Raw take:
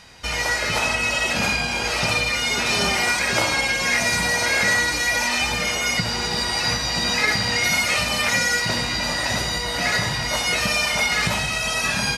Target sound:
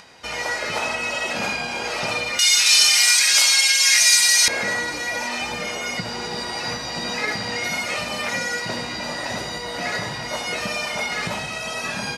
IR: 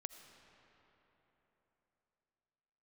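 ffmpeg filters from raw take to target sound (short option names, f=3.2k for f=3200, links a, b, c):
-af "asetnsamples=n=441:p=0,asendcmd='2.39 bandpass f 4600;4.48 bandpass f 410',bandpass=f=510:t=q:w=0.6:csg=0,acompressor=mode=upward:threshold=-46dB:ratio=2.5,crystalizer=i=5:c=0,volume=-1dB"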